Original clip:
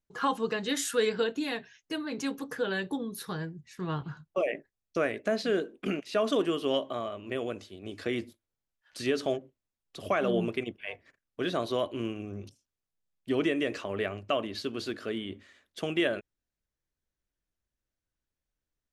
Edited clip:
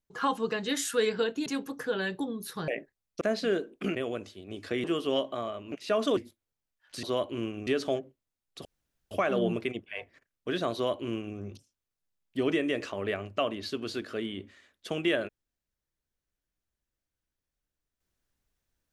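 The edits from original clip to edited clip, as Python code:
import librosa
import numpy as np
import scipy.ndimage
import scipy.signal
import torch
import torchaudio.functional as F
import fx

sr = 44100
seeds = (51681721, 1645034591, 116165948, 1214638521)

y = fx.edit(x, sr, fx.cut(start_s=1.46, length_s=0.72),
    fx.cut(start_s=3.4, length_s=1.05),
    fx.cut(start_s=4.98, length_s=0.25),
    fx.swap(start_s=5.97, length_s=0.45, other_s=7.3, other_length_s=0.89),
    fx.insert_room_tone(at_s=10.03, length_s=0.46),
    fx.duplicate(start_s=11.65, length_s=0.64, to_s=9.05), tone=tone)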